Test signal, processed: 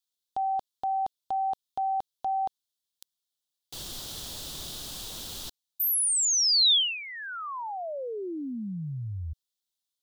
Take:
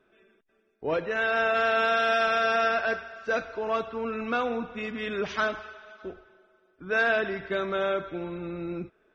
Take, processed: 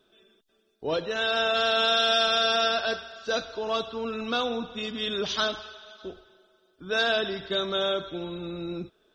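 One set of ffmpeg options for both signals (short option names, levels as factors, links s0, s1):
-af "highshelf=f=2800:t=q:w=3:g=8"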